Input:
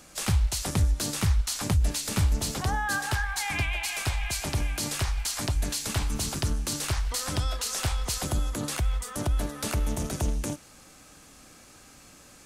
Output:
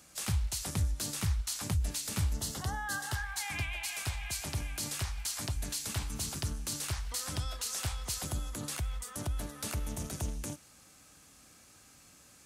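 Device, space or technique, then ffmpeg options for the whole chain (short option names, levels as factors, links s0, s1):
smiley-face EQ: -filter_complex "[0:a]asettb=1/sr,asplit=3[s0][s1][s2];[s0]atrim=end=2.364[s3];[s1]atrim=start=2.36:end=3.18,asetpts=PTS-STARTPTS,afade=t=in:d=0.004:c=qsin,afade=t=out:st=0.816:d=0.004:c=qsin,bandreject=f=2400:w=5.3[s4];[s2]atrim=start=3.176[s5];[s3][s4]acrossfade=d=0.004:c1=hsin:c2=qsin[s6];[s6][s5]acrossfade=d=0.004:c1=qsin:c2=hsin,highpass=63,lowshelf=f=110:g=4,equalizer=f=410:t=o:w=2.3:g=-3,highshelf=f=6400:g=4.5,volume=0.422"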